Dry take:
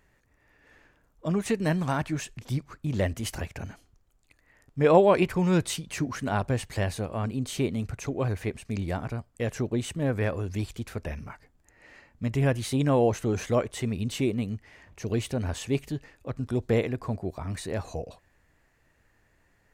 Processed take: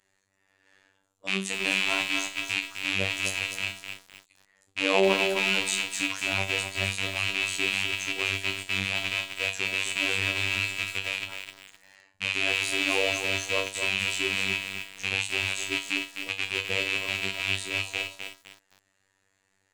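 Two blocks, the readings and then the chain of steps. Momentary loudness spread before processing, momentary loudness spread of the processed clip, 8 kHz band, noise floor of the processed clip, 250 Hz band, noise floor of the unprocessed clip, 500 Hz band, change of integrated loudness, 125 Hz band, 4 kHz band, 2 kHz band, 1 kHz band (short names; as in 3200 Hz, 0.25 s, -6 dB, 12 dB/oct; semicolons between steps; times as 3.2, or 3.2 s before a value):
13 LU, 8 LU, +5.5 dB, -73 dBFS, -9.0 dB, -67 dBFS, -5.5 dB, +2.0 dB, -12.5 dB, +13.5 dB, +13.0 dB, -3.5 dB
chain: rattling part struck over -35 dBFS, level -12 dBFS; LPF 10000 Hz 24 dB/oct; tilt +3 dB/oct; resonator 99 Hz, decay 0.33 s, harmonics all, mix 90%; robotiser 96.5 Hz; lo-fi delay 0.256 s, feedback 35%, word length 8-bit, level -6.5 dB; gain +6.5 dB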